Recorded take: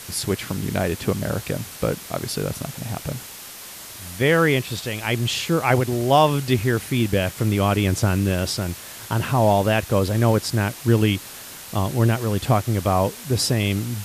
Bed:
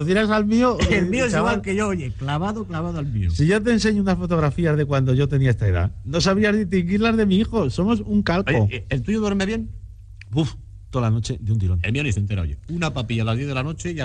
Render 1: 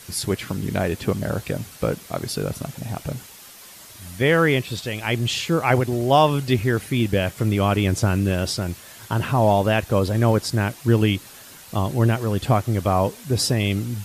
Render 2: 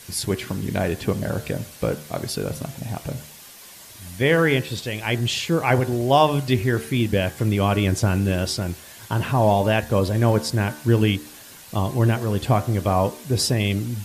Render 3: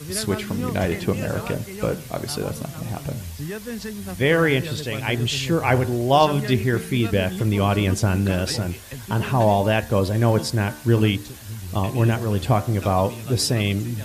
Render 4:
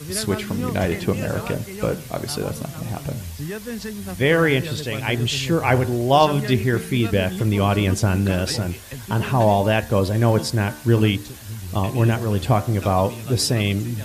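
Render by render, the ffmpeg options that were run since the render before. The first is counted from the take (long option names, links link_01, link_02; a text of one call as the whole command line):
ffmpeg -i in.wav -af "afftdn=noise_reduction=7:noise_floor=-39" out.wav
ffmpeg -i in.wav -af "bandreject=frequency=1300:width=14,bandreject=frequency=75.14:width_type=h:width=4,bandreject=frequency=150.28:width_type=h:width=4,bandreject=frequency=225.42:width_type=h:width=4,bandreject=frequency=300.56:width_type=h:width=4,bandreject=frequency=375.7:width_type=h:width=4,bandreject=frequency=450.84:width_type=h:width=4,bandreject=frequency=525.98:width_type=h:width=4,bandreject=frequency=601.12:width_type=h:width=4,bandreject=frequency=676.26:width_type=h:width=4,bandreject=frequency=751.4:width_type=h:width=4,bandreject=frequency=826.54:width_type=h:width=4,bandreject=frequency=901.68:width_type=h:width=4,bandreject=frequency=976.82:width_type=h:width=4,bandreject=frequency=1051.96:width_type=h:width=4,bandreject=frequency=1127.1:width_type=h:width=4,bandreject=frequency=1202.24:width_type=h:width=4,bandreject=frequency=1277.38:width_type=h:width=4,bandreject=frequency=1352.52:width_type=h:width=4,bandreject=frequency=1427.66:width_type=h:width=4,bandreject=frequency=1502.8:width_type=h:width=4,bandreject=frequency=1577.94:width_type=h:width=4,bandreject=frequency=1653.08:width_type=h:width=4,bandreject=frequency=1728.22:width_type=h:width=4,bandreject=frequency=1803.36:width_type=h:width=4,bandreject=frequency=1878.5:width_type=h:width=4,bandreject=frequency=1953.64:width_type=h:width=4" out.wav
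ffmpeg -i in.wav -i bed.wav -filter_complex "[1:a]volume=-13.5dB[link_01];[0:a][link_01]amix=inputs=2:normalize=0" out.wav
ffmpeg -i in.wav -af "volume=1dB" out.wav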